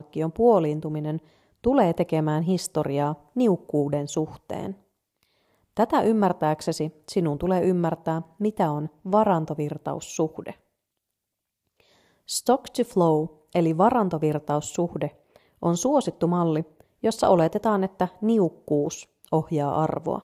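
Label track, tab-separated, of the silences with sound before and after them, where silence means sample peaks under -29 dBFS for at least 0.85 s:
4.710000	5.770000	silence
10.510000	12.290000	silence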